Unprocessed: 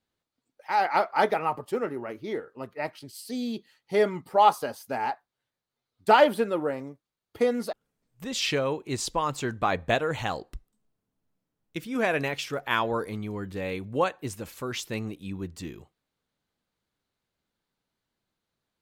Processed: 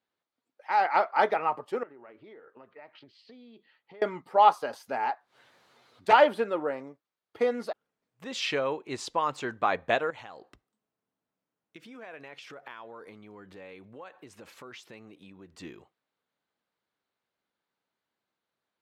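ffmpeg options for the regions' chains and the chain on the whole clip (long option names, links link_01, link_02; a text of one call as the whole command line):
ffmpeg -i in.wav -filter_complex "[0:a]asettb=1/sr,asplit=3[link_01][link_02][link_03];[link_01]atrim=end=1.834[link_04];[link_02]atrim=start=1.83:end=4.02,asetpts=PTS-STARTPTS,afade=type=in:duration=0.004:curve=qsin,afade=type=out:start_time=2.186:duration=0.004:curve=qsin,lowpass=frequency=3800:width=0.5412,lowpass=frequency=3800:width=1.3066,acompressor=threshold=-43dB:ratio=16:attack=3.2:release=140:knee=1:detection=peak[link_05];[link_03]atrim=start=4.016[link_06];[link_04][link_05]acrossfade=duration=0.004:curve1=hsin:curve2=qsin[link_07];[link_07][link_06]acrossfade=duration=0.004:curve1=qsin:curve2=hsin,asettb=1/sr,asplit=3[link_08][link_09][link_10];[link_08]atrim=end=4.734[link_11];[link_09]atrim=start=4.73:end=6.13,asetpts=PTS-STARTPTS,afade=type=in:duration=0.004:curve=qsin,afade=type=out:start_time=1.396:duration=0.004:curve=qsin,acompressor=mode=upward:threshold=-35dB:ratio=2.5:attack=3.2:release=140:knee=2.83:detection=peak,aeval=exprs='0.2*(abs(mod(val(0)/0.2+3,4)-2)-1)':channel_layout=same[link_12];[link_10]atrim=start=6.126[link_13];[link_11][link_12]acrossfade=duration=0.004:curve1=hsin:curve2=qsin[link_14];[link_14][link_13]acrossfade=duration=0.004:curve1=qsin:curve2=hsin,asettb=1/sr,asplit=3[link_15][link_16][link_17];[link_15]atrim=end=10.104[link_18];[link_16]atrim=start=10.1:end=15.54,asetpts=PTS-STARTPTS,afade=type=in:duration=0.004:curve=qsin,afade=type=out:start_time=5.436:duration=0.004:curve=qsin,highpass=57,acompressor=threshold=-39dB:ratio=12:attack=3.2:release=140:knee=1:detection=peak[link_19];[link_17]atrim=start=15.536[link_20];[link_18][link_19]acrossfade=duration=0.004:curve1=hsin:curve2=qsin[link_21];[link_21][link_20]acrossfade=duration=0.004:curve1=qsin:curve2=hsin,highpass=frequency=610:poles=1,aemphasis=mode=reproduction:type=75fm,volume=1.5dB" out.wav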